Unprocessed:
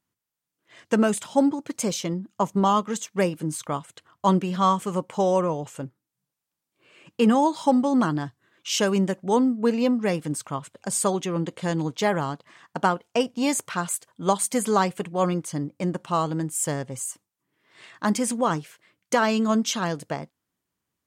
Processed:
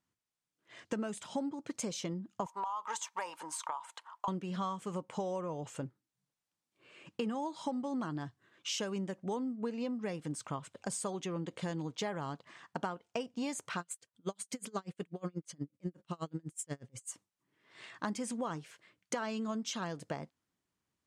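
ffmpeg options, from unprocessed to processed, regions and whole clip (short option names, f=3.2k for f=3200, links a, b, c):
-filter_complex "[0:a]asettb=1/sr,asplit=3[a][b][c];[a]atrim=end=2.464[d];[b]atrim=start=2.46:end=4.28,asetpts=PTS-STARTPTS,afade=t=in:d=0.004:c=qsin,afade=t=out:st=1.816:d=0.004:c=qsin,highpass=f=920:t=q:w=9.2,highshelf=f=11k:g=5.5,acompressor=threshold=-24dB:ratio=6:attack=3.2:release=140:knee=1:detection=peak[e];[c]atrim=start=4.276[f];[d][e]acrossfade=d=0.004:c1=hsin:c2=qsin[g];[g][f]acrossfade=d=0.004:c1=qsin:c2=hsin,asettb=1/sr,asplit=3[h][i][j];[h]atrim=end=13.804[k];[i]atrim=start=13.8:end=17.09,asetpts=PTS-STARTPTS,afade=t=in:d=0.004:c=qsin,afade=t=out:st=3.286:d=0.004:c=qsin,equalizer=f=870:t=o:w=0.85:g=-7.5,aeval=exprs='val(0)*pow(10,-37*(0.5-0.5*cos(2*PI*8.2*n/s))/20)':c=same[l];[j]atrim=start=17.086[m];[k][l]acrossfade=d=0.004:c1=hsin:c2=qsin[n];[n][m]acrossfade=d=0.004:c1=qsin:c2=hsin,acompressor=threshold=-31dB:ratio=6,lowpass=8.7k,volume=-3.5dB"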